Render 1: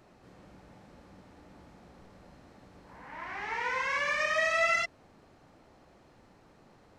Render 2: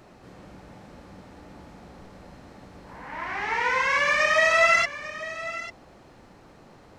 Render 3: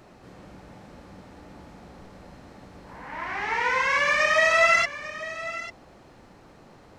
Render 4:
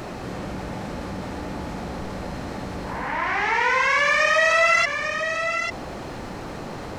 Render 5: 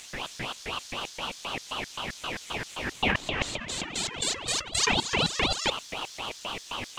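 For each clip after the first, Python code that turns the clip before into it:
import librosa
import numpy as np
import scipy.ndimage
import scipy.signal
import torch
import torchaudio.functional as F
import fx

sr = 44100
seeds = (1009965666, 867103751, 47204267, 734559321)

y1 = x + 10.0 ** (-14.5 / 20.0) * np.pad(x, (int(845 * sr / 1000.0), 0))[:len(x)]
y1 = y1 * 10.0 ** (8.0 / 20.0)
y2 = y1
y3 = fx.env_flatten(y2, sr, amount_pct=50)
y4 = fx.filter_lfo_highpass(y3, sr, shape='square', hz=3.8, low_hz=980.0, high_hz=5100.0, q=2.2)
y4 = fx.over_compress(y4, sr, threshold_db=-24.0, ratio=-0.5)
y4 = fx.ring_lfo(y4, sr, carrier_hz=1400.0, swing_pct=50, hz=4.0)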